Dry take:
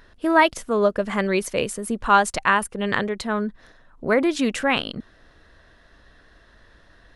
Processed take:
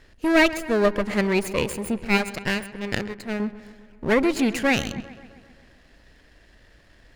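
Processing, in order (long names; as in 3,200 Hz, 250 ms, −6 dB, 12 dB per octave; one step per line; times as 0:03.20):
lower of the sound and its delayed copy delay 0.43 ms
0:02.04–0:03.40: power curve on the samples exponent 1.4
feedback echo with a low-pass in the loop 131 ms, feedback 64%, low-pass 3,800 Hz, level −15.5 dB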